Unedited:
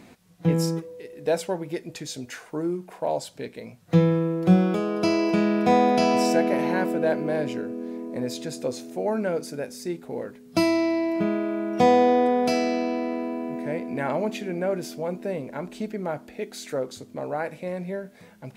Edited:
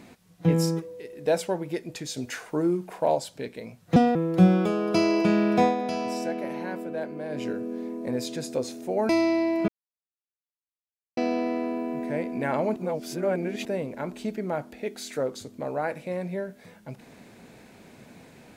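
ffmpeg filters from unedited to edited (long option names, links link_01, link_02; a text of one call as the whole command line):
ffmpeg -i in.wav -filter_complex "[0:a]asplit=12[link_01][link_02][link_03][link_04][link_05][link_06][link_07][link_08][link_09][link_10][link_11][link_12];[link_01]atrim=end=2.172[link_13];[link_02]atrim=start=2.168:end=3.152,asetpts=PTS-STARTPTS,volume=3dB[link_14];[link_03]atrim=start=3.148:end=3.964[link_15];[link_04]atrim=start=3.96:end=4.24,asetpts=PTS-STARTPTS,asetrate=64386,aresample=44100[link_16];[link_05]atrim=start=4.236:end=5.84,asetpts=PTS-STARTPTS,afade=type=out:start_time=1.434:duration=0.17:silence=0.354813[link_17];[link_06]atrim=start=5.84:end=7.38,asetpts=PTS-STARTPTS,volume=-9dB[link_18];[link_07]atrim=start=7.38:end=9.182,asetpts=PTS-STARTPTS,afade=type=in:duration=0.17:silence=0.354813[link_19];[link_08]atrim=start=10.648:end=11.24,asetpts=PTS-STARTPTS,afade=type=out:start_time=0.588:duration=0.004:curve=hsin[link_20];[link_09]atrim=start=11.24:end=12.73,asetpts=PTS-STARTPTS,volume=0[link_21];[link_10]atrim=start=12.73:end=14.322,asetpts=PTS-STARTPTS,afade=type=in:duration=0.004:curve=hsin[link_22];[link_11]atrim=start=14.318:end=15.212,asetpts=PTS-STARTPTS,areverse[link_23];[link_12]atrim=start=15.208[link_24];[link_13][link_14]acrossfade=duration=0.004:curve1=hsin:curve2=hsin[link_25];[link_25][link_15]acrossfade=duration=0.004:curve1=hsin:curve2=hsin[link_26];[link_26][link_16]acrossfade=duration=0.004:curve1=hsin:curve2=hsin[link_27];[link_17][link_18][link_19]concat=n=3:v=0:a=1[link_28];[link_27][link_28]acrossfade=duration=0.004:curve1=hsin:curve2=hsin[link_29];[link_20][link_21][link_22]concat=n=3:v=0:a=1[link_30];[link_29][link_30]acrossfade=duration=0.004:curve1=hsin:curve2=hsin[link_31];[link_31][link_23]acrossfade=duration=0.004:curve1=hsin:curve2=hsin[link_32];[link_32][link_24]acrossfade=duration=0.004:curve1=hsin:curve2=hsin" out.wav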